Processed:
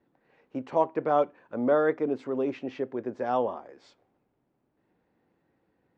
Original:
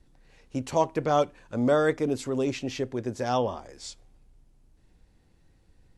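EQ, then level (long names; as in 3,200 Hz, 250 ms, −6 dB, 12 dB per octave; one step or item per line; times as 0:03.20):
high-pass filter 250 Hz 12 dB per octave
low-pass filter 1,700 Hz 12 dB per octave
0.0 dB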